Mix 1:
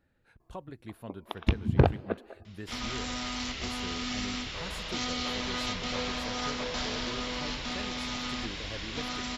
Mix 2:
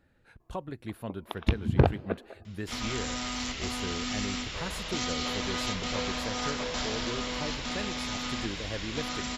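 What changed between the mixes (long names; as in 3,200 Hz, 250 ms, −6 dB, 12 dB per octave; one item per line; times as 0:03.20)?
speech +5.5 dB
second sound: remove Chebyshev low-pass filter 5,200 Hz, order 2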